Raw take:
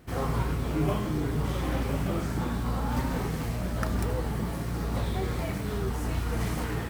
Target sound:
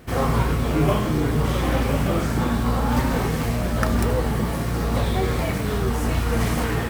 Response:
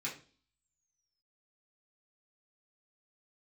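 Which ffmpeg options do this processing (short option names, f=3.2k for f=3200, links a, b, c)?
-filter_complex "[0:a]asplit=2[a][b];[1:a]atrim=start_sample=2205,asetrate=70560,aresample=44100,lowpass=3.2k[c];[b][c]afir=irnorm=-1:irlink=0,volume=-8.5dB[d];[a][d]amix=inputs=2:normalize=0,volume=8.5dB"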